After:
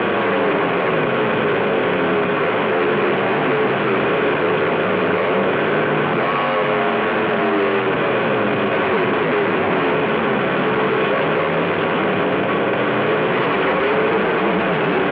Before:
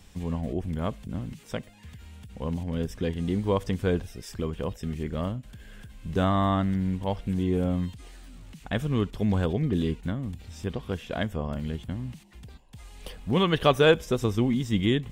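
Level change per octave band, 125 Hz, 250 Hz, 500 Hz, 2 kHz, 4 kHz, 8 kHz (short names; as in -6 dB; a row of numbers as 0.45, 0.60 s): +1.0 dB, +7.0 dB, +13.0 dB, +18.5 dB, +8.5 dB, n/a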